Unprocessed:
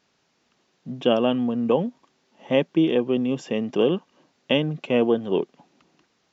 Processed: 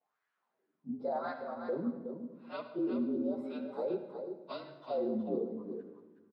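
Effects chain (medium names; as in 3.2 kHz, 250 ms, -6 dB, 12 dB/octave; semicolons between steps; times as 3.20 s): frequency axis rescaled in octaves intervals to 114%; wah-wah 0.91 Hz 240–1600 Hz, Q 4.4; peak limiter -27 dBFS, peak gain reduction 10 dB; delay 368 ms -7.5 dB; reverberation RT60 1.2 s, pre-delay 67 ms, DRR 9 dB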